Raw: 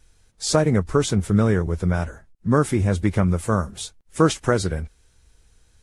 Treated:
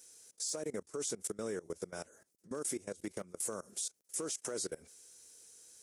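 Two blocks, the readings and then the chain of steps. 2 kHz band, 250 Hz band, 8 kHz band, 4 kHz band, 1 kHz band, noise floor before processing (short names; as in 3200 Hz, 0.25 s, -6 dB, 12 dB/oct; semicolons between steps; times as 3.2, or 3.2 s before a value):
-21.0 dB, -23.5 dB, -5.5 dB, -14.5 dB, -24.0 dB, -59 dBFS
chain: high shelf 2900 Hz +10 dB; hard clip -7 dBFS, distortion -29 dB; compressor 16:1, threshold -29 dBFS, peak gain reduction 18 dB; HPF 440 Hz 12 dB/oct; level quantiser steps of 21 dB; band shelf 1700 Hz -10.5 dB 2.9 oct; gain +6 dB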